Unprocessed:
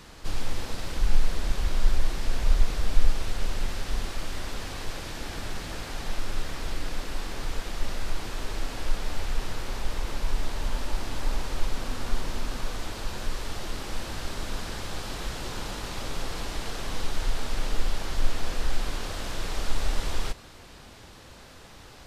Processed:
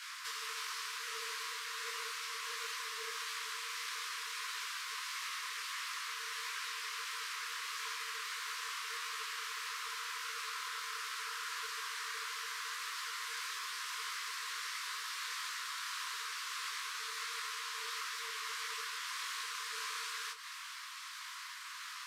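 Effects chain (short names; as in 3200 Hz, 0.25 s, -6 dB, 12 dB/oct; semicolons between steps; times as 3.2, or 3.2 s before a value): elliptic high-pass 590 Hz, stop band 40 dB; compressor, threshold -44 dBFS, peak gain reduction 9 dB; frequency shift +440 Hz; detuned doubles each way 53 cents; gain +9 dB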